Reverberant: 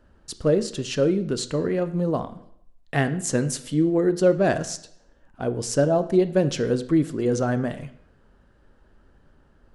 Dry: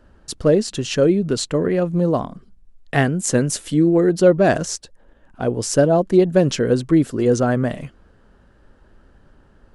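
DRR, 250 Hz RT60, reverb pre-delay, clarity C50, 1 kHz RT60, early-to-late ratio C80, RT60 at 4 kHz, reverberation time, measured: 11.0 dB, 0.70 s, 5 ms, 14.5 dB, 0.70 s, 17.0 dB, 0.65 s, 0.70 s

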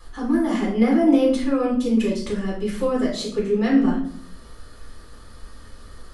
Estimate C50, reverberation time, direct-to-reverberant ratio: 5.0 dB, 0.60 s, -6.5 dB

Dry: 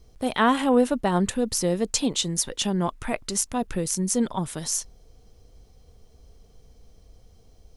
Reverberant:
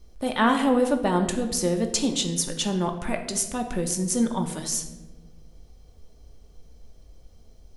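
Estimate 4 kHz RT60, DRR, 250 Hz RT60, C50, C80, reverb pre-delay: 0.70 s, 4.0 dB, 1.7 s, 9.0 dB, 11.5 dB, 3 ms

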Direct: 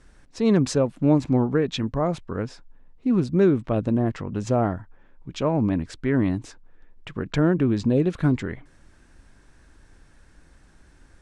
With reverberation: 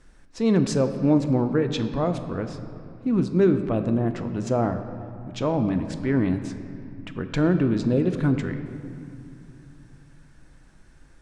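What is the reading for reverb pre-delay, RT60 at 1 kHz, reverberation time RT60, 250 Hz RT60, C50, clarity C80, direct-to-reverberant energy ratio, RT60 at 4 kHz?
3 ms, 2.5 s, 2.6 s, 3.6 s, 9.5 dB, 10.0 dB, 7.5 dB, 1.6 s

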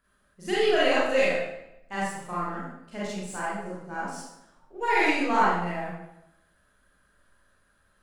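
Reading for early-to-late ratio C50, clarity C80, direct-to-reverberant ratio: -3.0 dB, 2.0 dB, -8.5 dB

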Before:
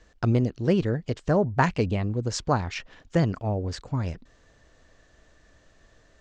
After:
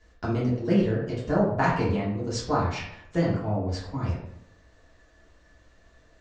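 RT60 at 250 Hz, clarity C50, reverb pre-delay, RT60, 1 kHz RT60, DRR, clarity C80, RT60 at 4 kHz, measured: 0.80 s, 3.0 dB, 3 ms, 0.75 s, 0.70 s, -8.0 dB, 6.5 dB, 0.45 s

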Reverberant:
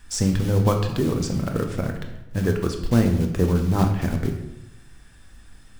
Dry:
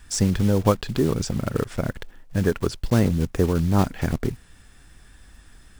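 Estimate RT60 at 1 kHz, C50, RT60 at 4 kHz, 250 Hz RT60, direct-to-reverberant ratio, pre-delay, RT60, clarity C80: 0.85 s, 7.5 dB, 0.70 s, 1.0 s, 3.5 dB, 4 ms, 0.90 s, 9.5 dB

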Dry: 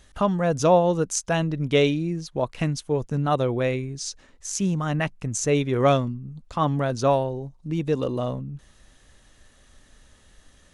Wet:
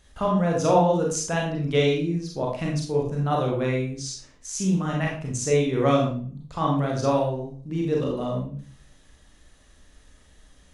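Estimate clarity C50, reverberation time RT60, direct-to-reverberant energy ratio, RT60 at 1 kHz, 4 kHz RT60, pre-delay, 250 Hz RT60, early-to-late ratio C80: 3.5 dB, 0.45 s, -2.0 dB, 0.40 s, 0.35 s, 30 ms, 0.50 s, 9.0 dB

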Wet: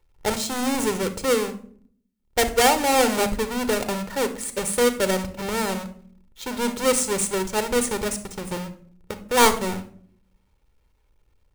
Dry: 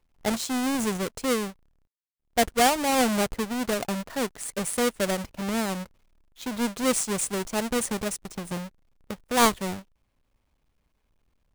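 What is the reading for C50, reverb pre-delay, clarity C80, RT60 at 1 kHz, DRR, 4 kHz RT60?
12.0 dB, 30 ms, 17.0 dB, 0.45 s, 10.0 dB, 0.35 s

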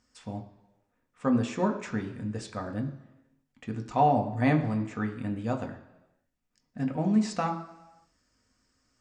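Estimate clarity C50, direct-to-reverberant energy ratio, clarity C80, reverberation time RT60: 11.0 dB, 3.5 dB, 13.0 dB, 1.0 s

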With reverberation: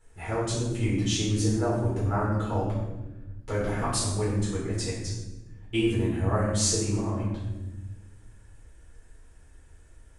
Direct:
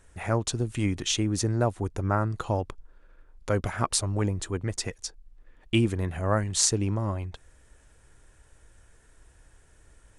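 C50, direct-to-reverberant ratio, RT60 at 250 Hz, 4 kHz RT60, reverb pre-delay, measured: 2.0 dB, -7.5 dB, 1.8 s, 0.75 s, 7 ms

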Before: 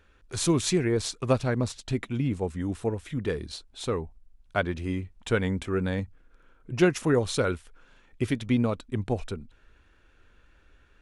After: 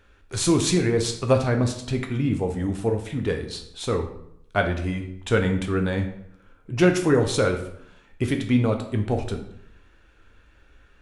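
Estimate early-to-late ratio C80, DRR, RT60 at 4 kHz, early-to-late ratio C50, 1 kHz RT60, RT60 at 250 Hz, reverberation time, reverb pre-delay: 12.0 dB, 4.0 dB, 0.50 s, 8.5 dB, 0.70 s, 0.80 s, 0.75 s, 8 ms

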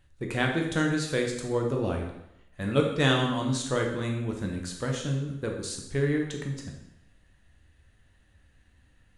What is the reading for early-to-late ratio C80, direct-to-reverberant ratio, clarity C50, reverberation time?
7.5 dB, 1.0 dB, 5.0 dB, 0.85 s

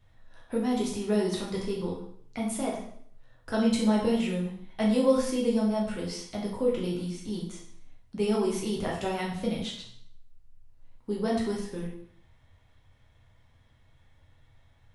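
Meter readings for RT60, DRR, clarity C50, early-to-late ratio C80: 0.60 s, -4.5 dB, 4.5 dB, 7.5 dB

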